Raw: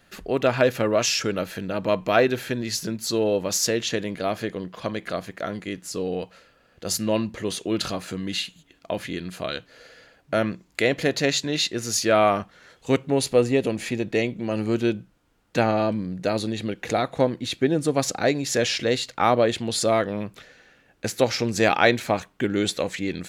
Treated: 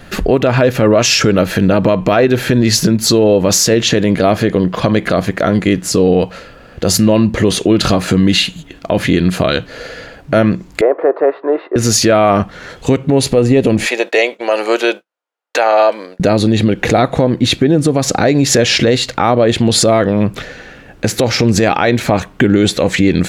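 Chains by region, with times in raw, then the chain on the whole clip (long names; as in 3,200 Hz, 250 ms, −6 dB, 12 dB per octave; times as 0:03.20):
0:10.81–0:11.76: elliptic band-pass filter 360–1,200 Hz, stop band 70 dB + tilt shelving filter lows −6.5 dB, about 740 Hz
0:13.86–0:16.20: high-pass filter 530 Hz 24 dB per octave + downward expander −48 dBFS
whole clip: spectral tilt −1.5 dB per octave; downward compressor 2.5 to 1, threshold −27 dBFS; boost into a limiter +21 dB; level −1 dB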